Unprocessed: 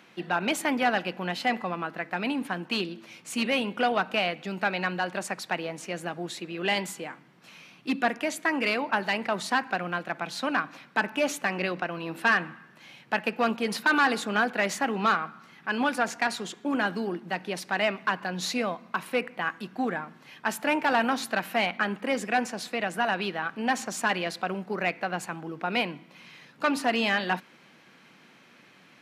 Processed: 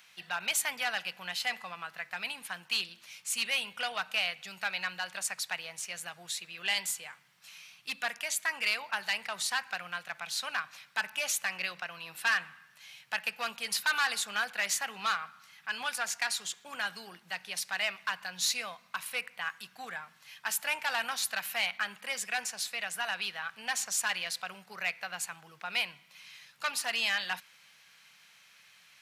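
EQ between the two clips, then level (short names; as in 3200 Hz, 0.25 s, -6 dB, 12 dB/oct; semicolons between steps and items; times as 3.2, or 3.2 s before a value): passive tone stack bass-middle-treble 10-0-10; high shelf 5100 Hz +8.5 dB; 0.0 dB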